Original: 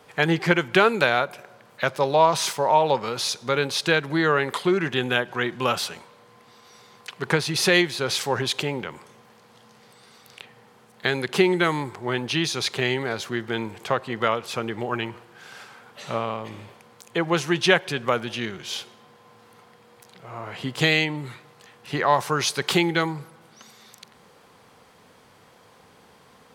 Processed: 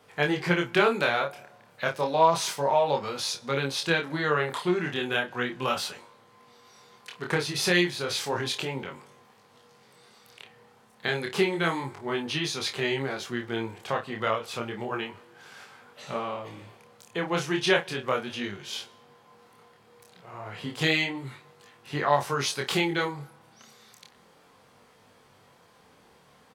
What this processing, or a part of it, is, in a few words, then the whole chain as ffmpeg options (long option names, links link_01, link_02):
double-tracked vocal: -filter_complex "[0:a]asplit=2[link_01][link_02];[link_02]adelay=29,volume=-9dB[link_03];[link_01][link_03]amix=inputs=2:normalize=0,flanger=delay=20:depth=7.9:speed=0.32,volume=-2dB"